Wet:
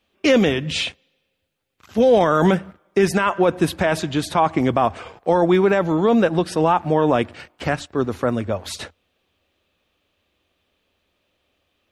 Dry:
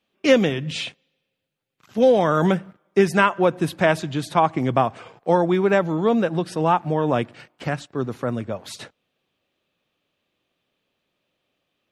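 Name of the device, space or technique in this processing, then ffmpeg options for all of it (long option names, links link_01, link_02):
car stereo with a boomy subwoofer: -af "lowshelf=frequency=100:width_type=q:width=3:gain=7,alimiter=limit=-12.5dB:level=0:latency=1:release=10,volume=5.5dB"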